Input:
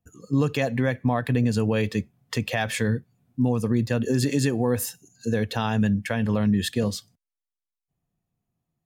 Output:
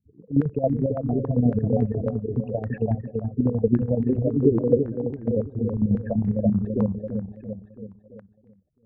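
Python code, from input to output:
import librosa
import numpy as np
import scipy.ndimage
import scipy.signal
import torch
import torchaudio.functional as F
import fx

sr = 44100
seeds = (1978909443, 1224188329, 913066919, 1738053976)

p1 = scipy.signal.medfilt(x, 41)
p2 = fx.spec_gate(p1, sr, threshold_db=-10, keep='strong')
p3 = fx.wow_flutter(p2, sr, seeds[0], rate_hz=2.1, depth_cents=27.0)
p4 = fx.chopper(p3, sr, hz=11.0, depth_pct=65, duty_pct=45)
p5 = p4 + fx.echo_feedback(p4, sr, ms=335, feedback_pct=48, wet_db=-4.5, dry=0)
p6 = fx.filter_held_lowpass(p5, sr, hz=7.2, low_hz=410.0, high_hz=2000.0)
y = F.gain(torch.from_numpy(p6), 2.0).numpy()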